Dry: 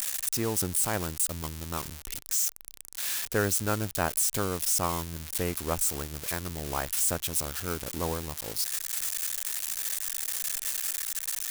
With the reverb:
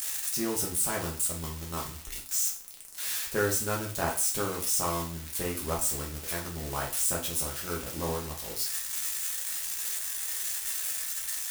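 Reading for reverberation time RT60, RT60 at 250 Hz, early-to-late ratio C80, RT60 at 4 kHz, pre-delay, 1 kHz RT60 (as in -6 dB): 0.40 s, 0.35 s, 13.5 dB, 0.40 s, 4 ms, 0.40 s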